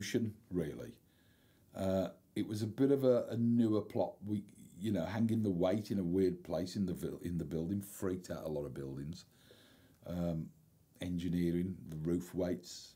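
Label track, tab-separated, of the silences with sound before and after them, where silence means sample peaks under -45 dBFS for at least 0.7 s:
0.900000	1.760000	silence
9.210000	10.060000	silence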